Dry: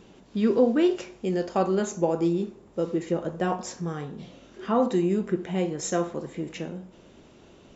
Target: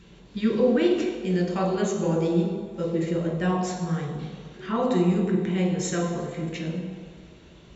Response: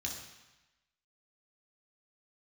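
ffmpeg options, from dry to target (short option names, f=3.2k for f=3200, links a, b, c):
-filter_complex "[0:a]asplit=2[a][b];[1:a]atrim=start_sample=2205,asetrate=26901,aresample=44100,lowshelf=f=430:g=3[c];[b][c]afir=irnorm=-1:irlink=0,volume=0dB[d];[a][d]amix=inputs=2:normalize=0,volume=-5.5dB"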